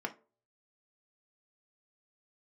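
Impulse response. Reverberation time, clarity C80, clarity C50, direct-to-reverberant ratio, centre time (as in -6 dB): 0.40 s, 24.0 dB, 16.5 dB, 3.0 dB, 6 ms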